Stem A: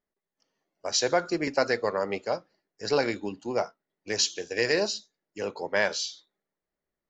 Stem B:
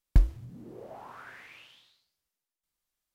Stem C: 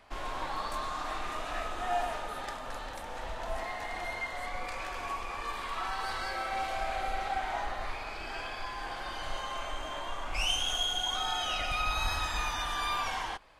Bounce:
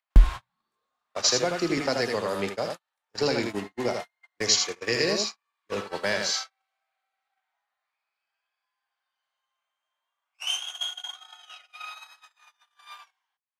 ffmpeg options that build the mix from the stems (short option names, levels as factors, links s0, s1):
-filter_complex "[0:a]adelay=300,volume=0.841,asplit=2[s0][s1];[s1]volume=0.531[s2];[1:a]lowshelf=f=69:g=5.5,flanger=delay=3.8:depth=2:regen=33:speed=1.1:shape=triangular,volume=1.19,asplit=2[s3][s4];[s4]volume=0.1[s5];[2:a]highpass=1100,acompressor=mode=upward:threshold=0.0158:ratio=2.5,volume=0.841[s6];[s2][s5]amix=inputs=2:normalize=0,aecho=0:1:80:1[s7];[s0][s3][s6][s7]amix=inputs=4:normalize=0,acontrast=30,agate=range=0.00447:threshold=0.0447:ratio=16:detection=peak,acrossover=split=310|3000[s8][s9][s10];[s9]acompressor=threshold=0.0251:ratio=2[s11];[s8][s11][s10]amix=inputs=3:normalize=0"